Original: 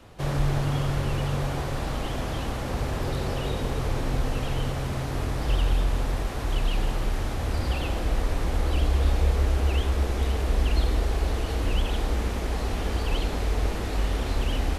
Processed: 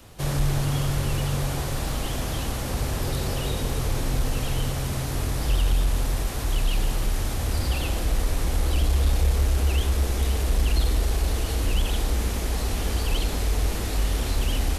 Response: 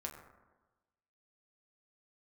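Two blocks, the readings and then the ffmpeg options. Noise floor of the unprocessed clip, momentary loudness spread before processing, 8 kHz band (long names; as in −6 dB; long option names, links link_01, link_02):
−30 dBFS, 5 LU, +9.0 dB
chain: -af "crystalizer=i=3:c=0,lowshelf=frequency=240:gain=4.5,acontrast=86,volume=-9dB"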